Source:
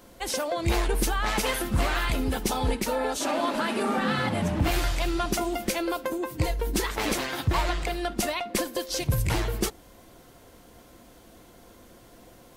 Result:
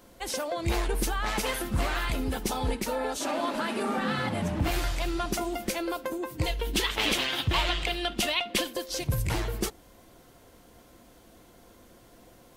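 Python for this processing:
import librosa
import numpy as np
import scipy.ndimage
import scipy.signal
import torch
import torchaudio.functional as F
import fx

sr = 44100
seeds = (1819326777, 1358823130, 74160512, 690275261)

y = fx.peak_eq(x, sr, hz=3100.0, db=13.0, octaves=0.85, at=(6.46, 8.73))
y = y * librosa.db_to_amplitude(-3.0)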